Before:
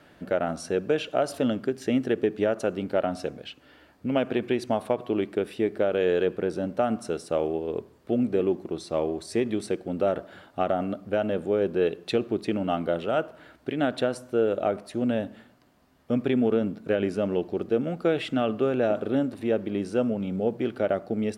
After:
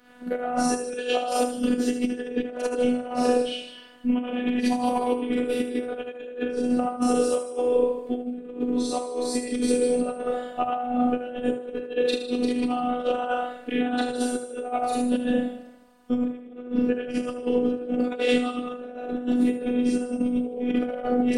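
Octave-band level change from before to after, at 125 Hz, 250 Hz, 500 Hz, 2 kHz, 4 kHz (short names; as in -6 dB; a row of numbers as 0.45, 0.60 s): -10.5, +3.5, -1.0, +1.0, +4.0 dB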